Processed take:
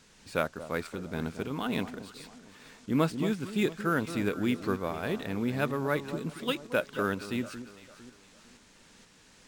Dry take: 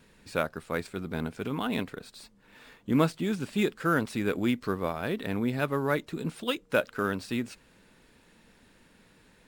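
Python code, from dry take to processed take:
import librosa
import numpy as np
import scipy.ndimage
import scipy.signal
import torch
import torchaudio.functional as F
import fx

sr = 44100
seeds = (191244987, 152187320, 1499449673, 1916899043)

y = fx.dmg_noise_band(x, sr, seeds[0], low_hz=710.0, high_hz=7900.0, level_db=-60.0)
y = fx.echo_alternate(y, sr, ms=227, hz=1100.0, feedback_pct=58, wet_db=-11)
y = fx.tremolo_shape(y, sr, shape='saw_up', hz=2.1, depth_pct=35)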